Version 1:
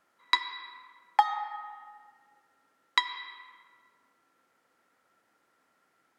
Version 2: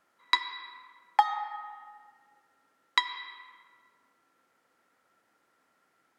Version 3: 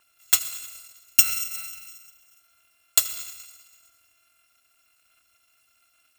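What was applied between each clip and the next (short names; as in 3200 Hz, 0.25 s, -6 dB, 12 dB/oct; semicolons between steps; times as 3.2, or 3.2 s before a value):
nothing audible
FFT order left unsorted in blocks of 256 samples; gain +6 dB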